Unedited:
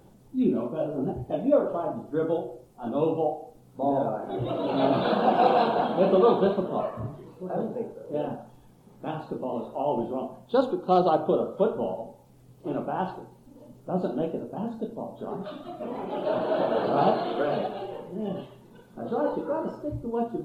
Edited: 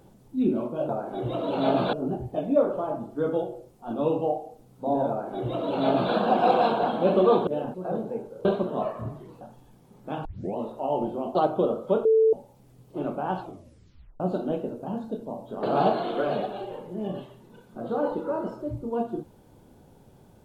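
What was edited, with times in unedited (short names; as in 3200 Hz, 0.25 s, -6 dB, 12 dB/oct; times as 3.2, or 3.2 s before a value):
4.05–5.09 copy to 0.89
6.43–7.39 swap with 8.1–8.37
9.21 tape start 0.32 s
10.31–11.05 cut
11.75–12.03 bleep 443 Hz -15.5 dBFS
13.1 tape stop 0.80 s
15.33–16.84 cut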